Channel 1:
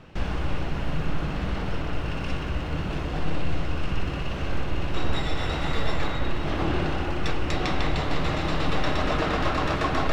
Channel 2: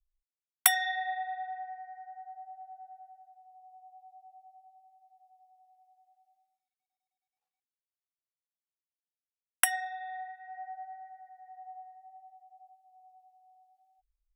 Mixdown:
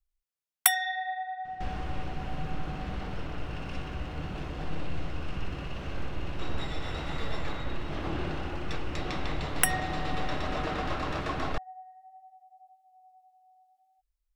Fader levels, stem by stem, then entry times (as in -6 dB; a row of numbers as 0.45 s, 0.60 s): -7.5 dB, +0.5 dB; 1.45 s, 0.00 s